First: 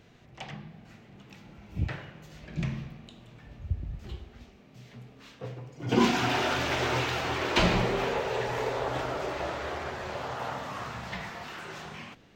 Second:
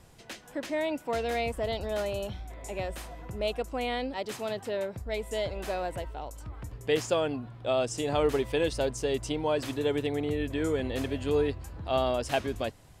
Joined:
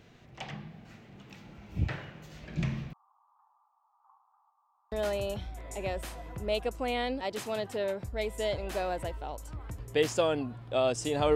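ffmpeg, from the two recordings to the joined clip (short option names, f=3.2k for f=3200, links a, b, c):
-filter_complex "[0:a]asettb=1/sr,asplit=3[a][b][c];[a]atrim=end=2.934[d];[b]atrim=start=2.93:end=4.92,asetpts=PTS-STARTPTS,afade=t=in:d=0.004:c=qsin,afade=t=out:st=1.986:d=0.004:c=qsin,asuperpass=centerf=1000:order=8:qfactor=2.5[e];[c]atrim=start=4.916[f];[d][e]acrossfade=d=0.004:c1=hsin:c2=qsin[g];[g][f]acrossfade=d=0.004:c1=qsin:c2=hsin,apad=whole_dur=11.35,atrim=end=11.35,atrim=end=4.922[h];[1:a]atrim=start=1.848:end=8.28[i];[h][i]acrossfade=d=0.004:c1=hsin:c2=hsin"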